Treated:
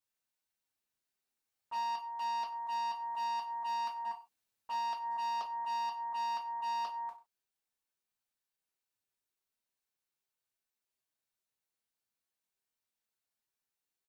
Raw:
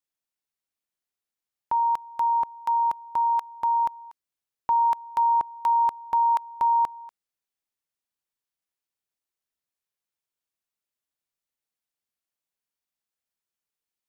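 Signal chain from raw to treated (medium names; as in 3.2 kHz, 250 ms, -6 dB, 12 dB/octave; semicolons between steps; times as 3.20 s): 1.98–4.05 s: high-pass 1.5 kHz 6 dB/octave; gain riding 2 s; slow attack 111 ms; compression, threshold -27 dBFS, peak gain reduction 8.5 dB; peak limiter -30 dBFS, peak gain reduction 9 dB; hard clipper -38.5 dBFS, distortion -9 dB; AM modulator 220 Hz, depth 50%; delay 93 ms -16 dB; gated-style reverb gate 90 ms falling, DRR -3 dB; loudspeaker Doppler distortion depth 0.2 ms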